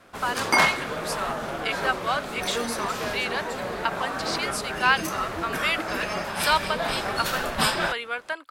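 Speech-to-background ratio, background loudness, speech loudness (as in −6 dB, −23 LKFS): −1.5 dB, −27.5 LKFS, −29.0 LKFS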